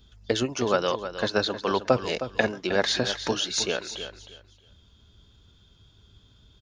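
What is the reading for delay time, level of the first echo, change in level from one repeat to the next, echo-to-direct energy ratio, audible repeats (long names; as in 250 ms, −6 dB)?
313 ms, −11.0 dB, −13.5 dB, −11.0 dB, 2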